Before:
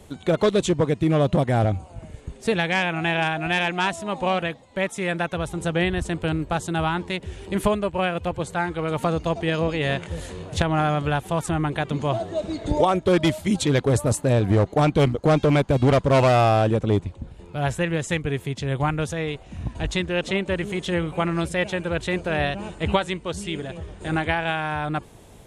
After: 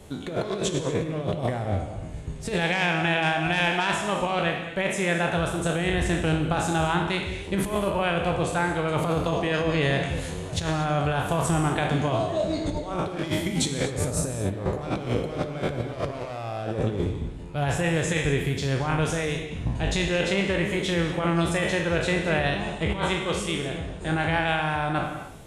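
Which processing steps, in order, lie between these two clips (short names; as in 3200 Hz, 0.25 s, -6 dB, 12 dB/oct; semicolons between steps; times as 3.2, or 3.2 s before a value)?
spectral trails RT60 0.58 s; negative-ratio compressor -22 dBFS, ratio -0.5; non-linear reverb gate 0.27 s flat, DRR 6.5 dB; gain -3 dB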